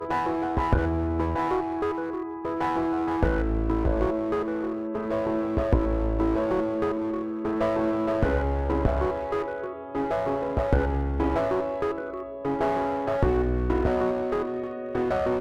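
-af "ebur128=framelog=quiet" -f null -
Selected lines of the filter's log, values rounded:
Integrated loudness:
  I:         -26.7 LUFS
  Threshold: -36.7 LUFS
Loudness range:
  LRA:         1.1 LU
  Threshold: -46.7 LUFS
  LRA low:   -27.1 LUFS
  LRA high:  -26.1 LUFS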